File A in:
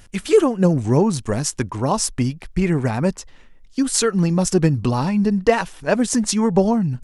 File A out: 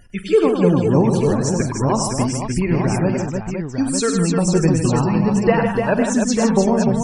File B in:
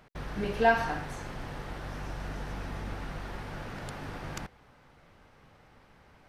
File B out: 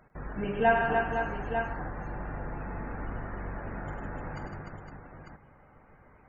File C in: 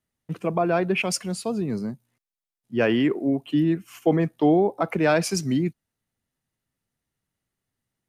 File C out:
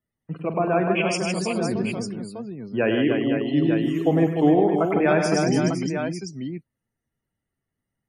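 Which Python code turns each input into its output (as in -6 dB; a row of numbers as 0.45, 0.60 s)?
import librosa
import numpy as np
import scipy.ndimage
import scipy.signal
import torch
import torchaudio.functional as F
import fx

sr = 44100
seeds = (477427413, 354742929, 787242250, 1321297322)

y = fx.spec_topn(x, sr, count=64)
y = fx.echo_multitap(y, sr, ms=(45, 100, 156, 299, 510, 898), db=(-14.0, -7.5, -7.5, -5.5, -8.0, -7.5))
y = y * 10.0 ** (-1.0 / 20.0)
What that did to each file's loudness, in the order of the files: +1.5, +1.5, +1.5 LU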